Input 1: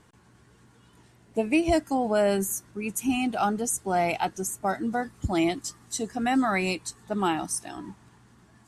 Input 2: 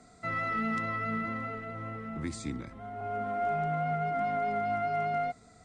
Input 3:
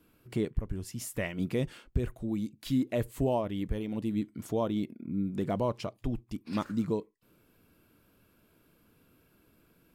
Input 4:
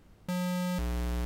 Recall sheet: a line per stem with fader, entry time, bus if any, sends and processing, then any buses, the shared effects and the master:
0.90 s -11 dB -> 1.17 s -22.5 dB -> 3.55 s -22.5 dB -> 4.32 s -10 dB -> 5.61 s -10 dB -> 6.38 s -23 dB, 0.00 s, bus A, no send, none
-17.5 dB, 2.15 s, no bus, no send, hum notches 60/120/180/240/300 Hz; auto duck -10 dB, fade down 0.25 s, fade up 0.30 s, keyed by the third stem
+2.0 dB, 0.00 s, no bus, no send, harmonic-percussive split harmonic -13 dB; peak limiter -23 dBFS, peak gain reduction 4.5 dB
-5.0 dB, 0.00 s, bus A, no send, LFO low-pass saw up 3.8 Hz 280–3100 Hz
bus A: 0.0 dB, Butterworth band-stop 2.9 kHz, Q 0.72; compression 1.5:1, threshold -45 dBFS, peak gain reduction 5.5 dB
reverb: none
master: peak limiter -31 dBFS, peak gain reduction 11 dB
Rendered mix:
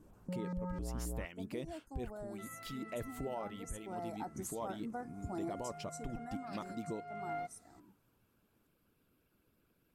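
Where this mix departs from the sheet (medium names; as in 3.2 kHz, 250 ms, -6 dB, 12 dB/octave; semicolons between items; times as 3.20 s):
stem 2 -17.5 dB -> -9.0 dB; stem 3 +2.0 dB -> -5.5 dB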